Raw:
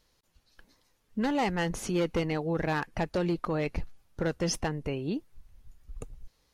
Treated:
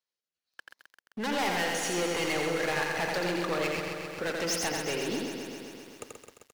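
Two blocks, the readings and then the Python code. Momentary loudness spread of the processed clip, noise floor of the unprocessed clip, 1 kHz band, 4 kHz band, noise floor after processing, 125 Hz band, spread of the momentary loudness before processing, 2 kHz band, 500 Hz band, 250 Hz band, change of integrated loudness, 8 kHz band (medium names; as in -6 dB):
16 LU, -71 dBFS, +1.5 dB, +7.0 dB, under -85 dBFS, -7.5 dB, 15 LU, +6.0 dB, +1.0 dB, -3.5 dB, +1.0 dB, +6.0 dB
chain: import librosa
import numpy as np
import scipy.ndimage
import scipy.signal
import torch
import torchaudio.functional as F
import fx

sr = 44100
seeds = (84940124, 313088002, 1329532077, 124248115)

y = fx.weighting(x, sr, curve='A')
y = fx.rotary_switch(y, sr, hz=1.2, then_hz=8.0, switch_at_s=2.23)
y = fx.low_shelf(y, sr, hz=480.0, db=-5.0)
y = fx.leveller(y, sr, passes=5)
y = y + 10.0 ** (-4.0 / 20.0) * np.pad(y, (int(85 * sr / 1000.0), 0))[:len(y)]
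y = fx.echo_crushed(y, sr, ms=131, feedback_pct=80, bits=8, wet_db=-6.5)
y = F.gain(torch.from_numpy(y), -7.0).numpy()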